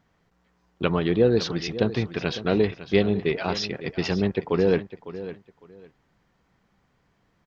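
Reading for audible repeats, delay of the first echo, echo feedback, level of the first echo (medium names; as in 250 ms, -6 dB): 2, 554 ms, 21%, -14.0 dB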